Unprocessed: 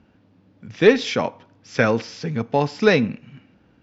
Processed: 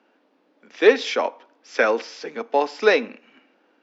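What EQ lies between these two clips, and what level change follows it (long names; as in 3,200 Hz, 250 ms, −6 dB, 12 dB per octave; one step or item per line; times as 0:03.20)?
Bessel high-pass filter 510 Hz, order 8
spectral tilt −1.5 dB per octave
+2.0 dB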